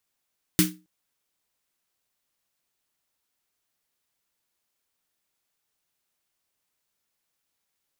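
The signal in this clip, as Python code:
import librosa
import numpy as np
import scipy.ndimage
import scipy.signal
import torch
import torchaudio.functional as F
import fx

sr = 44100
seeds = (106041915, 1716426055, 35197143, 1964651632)

y = fx.drum_snare(sr, seeds[0], length_s=0.27, hz=180.0, second_hz=310.0, noise_db=-0.5, noise_from_hz=1300.0, decay_s=0.3, noise_decay_s=0.22)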